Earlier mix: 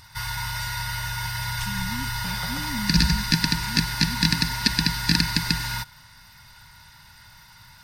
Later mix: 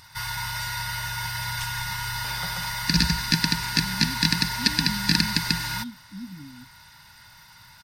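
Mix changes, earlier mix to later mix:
speech: entry +2.10 s; master: add bass shelf 97 Hz -8 dB

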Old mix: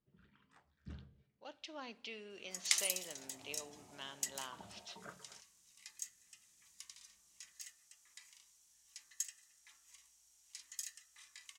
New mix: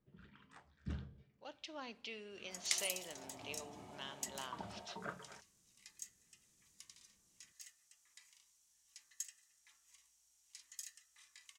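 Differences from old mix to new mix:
first sound +7.0 dB; second sound -4.5 dB

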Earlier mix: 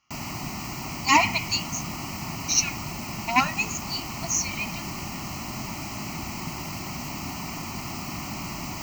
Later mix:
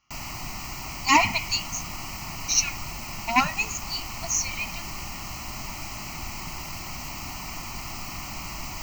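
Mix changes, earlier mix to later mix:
background: add peaking EQ 210 Hz -9 dB 2.7 oct; master: remove high-pass 95 Hz 6 dB/octave

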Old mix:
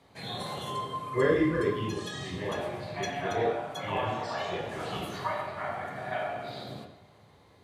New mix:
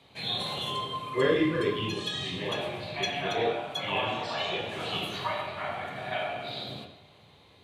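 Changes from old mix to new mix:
speech: add high-pass 120 Hz; master: add high-order bell 3.1 kHz +9.5 dB 1 oct

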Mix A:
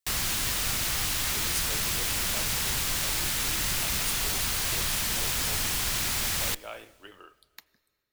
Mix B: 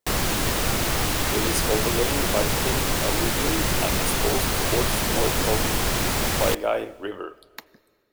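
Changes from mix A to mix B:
background -5.0 dB; master: remove amplifier tone stack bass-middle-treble 5-5-5

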